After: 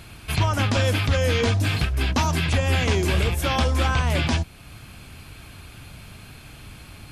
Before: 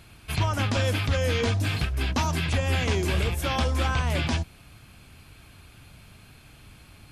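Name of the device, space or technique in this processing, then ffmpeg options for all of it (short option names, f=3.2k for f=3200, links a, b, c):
parallel compression: -filter_complex "[0:a]asplit=2[a][b];[b]acompressor=threshold=-42dB:ratio=6,volume=-3dB[c];[a][c]amix=inputs=2:normalize=0,volume=3dB"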